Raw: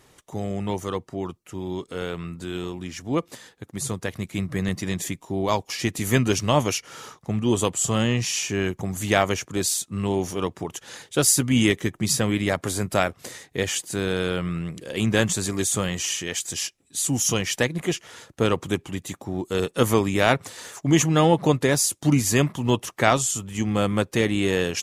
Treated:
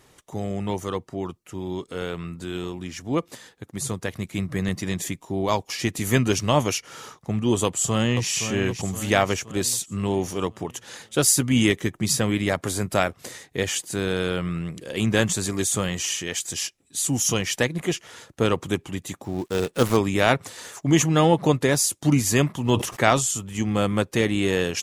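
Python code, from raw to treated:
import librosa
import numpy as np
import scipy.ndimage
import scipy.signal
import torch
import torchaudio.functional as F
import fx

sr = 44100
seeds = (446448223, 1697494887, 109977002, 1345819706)

y = fx.echo_throw(x, sr, start_s=7.64, length_s=0.65, ms=520, feedback_pct=50, wet_db=-8.5)
y = fx.dead_time(y, sr, dead_ms=0.11, at=(19.24, 19.97))
y = fx.sustainer(y, sr, db_per_s=100.0, at=(22.69, 23.33))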